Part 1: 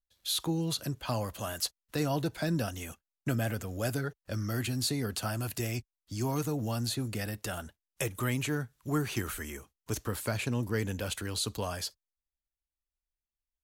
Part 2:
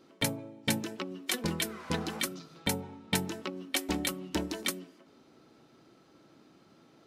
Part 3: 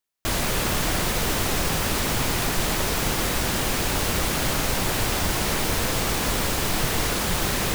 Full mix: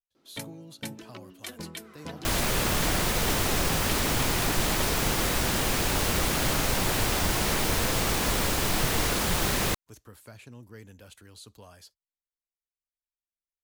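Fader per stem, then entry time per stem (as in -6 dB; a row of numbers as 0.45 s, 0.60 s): -15.5 dB, -8.0 dB, -2.0 dB; 0.00 s, 0.15 s, 2.00 s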